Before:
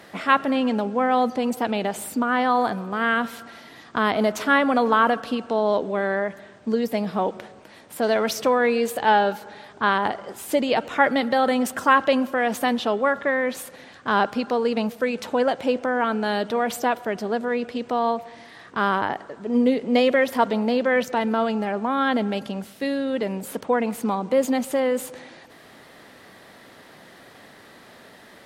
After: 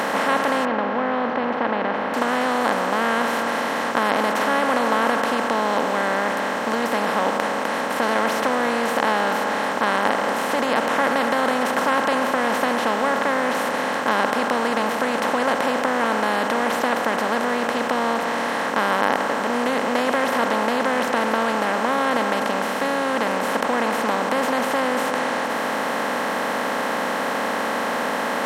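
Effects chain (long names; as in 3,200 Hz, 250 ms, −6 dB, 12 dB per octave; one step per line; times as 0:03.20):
compressor on every frequency bin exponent 0.2
0:00.65–0:02.14: high-frequency loss of the air 330 metres
level −10 dB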